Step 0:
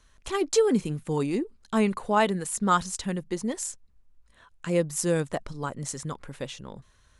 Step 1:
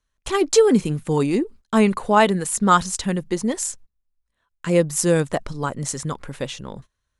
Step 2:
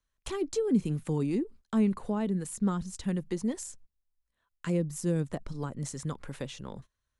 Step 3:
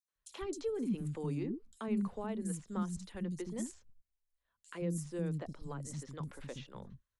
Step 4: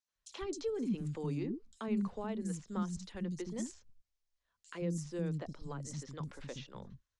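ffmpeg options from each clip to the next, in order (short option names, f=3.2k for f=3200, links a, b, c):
-af "agate=range=-23dB:threshold=-47dB:ratio=16:detection=peak,volume=7dB"
-filter_complex "[0:a]acrossover=split=340[a][b];[b]acompressor=threshold=-32dB:ratio=6[c];[a][c]amix=inputs=2:normalize=0,volume=-6.5dB"
-filter_complex "[0:a]acrossover=split=270|5000[a][b][c];[b]adelay=80[d];[a]adelay=150[e];[e][d][c]amix=inputs=3:normalize=0,volume=-6dB"
-af "lowpass=f=6k:t=q:w=1.6"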